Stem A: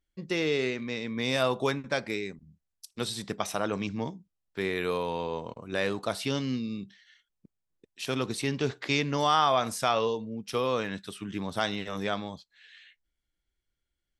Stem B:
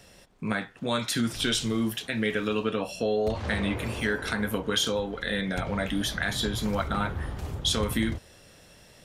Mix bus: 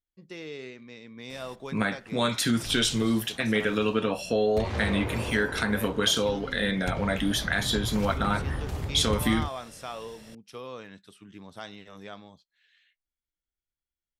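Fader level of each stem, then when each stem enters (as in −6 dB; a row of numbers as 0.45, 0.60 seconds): −12.0, +2.0 decibels; 0.00, 1.30 seconds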